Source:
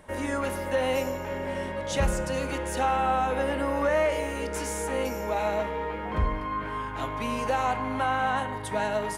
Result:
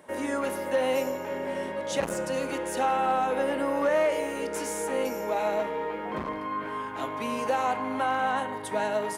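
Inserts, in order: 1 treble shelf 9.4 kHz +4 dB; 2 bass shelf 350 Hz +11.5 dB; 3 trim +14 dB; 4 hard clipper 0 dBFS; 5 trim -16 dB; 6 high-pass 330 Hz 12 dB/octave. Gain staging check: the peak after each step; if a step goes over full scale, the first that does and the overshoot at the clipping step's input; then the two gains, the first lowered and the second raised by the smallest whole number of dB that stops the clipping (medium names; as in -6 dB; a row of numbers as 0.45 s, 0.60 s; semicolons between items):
-15.5 dBFS, -5.5 dBFS, +8.5 dBFS, 0.0 dBFS, -16.0 dBFS, -15.0 dBFS; step 3, 8.5 dB; step 3 +5 dB, step 5 -7 dB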